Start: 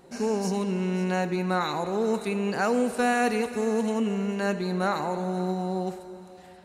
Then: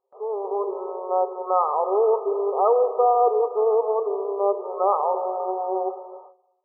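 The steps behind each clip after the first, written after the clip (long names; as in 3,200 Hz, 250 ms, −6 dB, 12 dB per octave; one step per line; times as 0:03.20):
brick-wall band-pass 370–1,300 Hz
noise gate with hold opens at −40 dBFS
automatic gain control gain up to 10.5 dB
level −2.5 dB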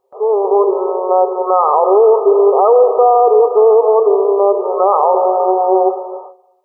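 low-shelf EQ 390 Hz +5.5 dB
boost into a limiter +13 dB
level −1 dB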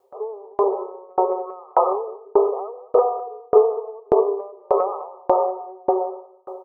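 downward compressor, threshold −17 dBFS, peak gain reduction 11 dB
on a send: repeating echo 209 ms, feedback 34%, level −4 dB
on the sum: tremolo with a ramp in dB decaying 1.7 Hz, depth 38 dB
level +6.5 dB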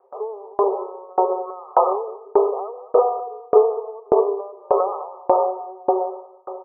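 low-pass filter 1,400 Hz 24 dB per octave
low-shelf EQ 200 Hz −10.5 dB
one half of a high-frequency compander encoder only
level +2 dB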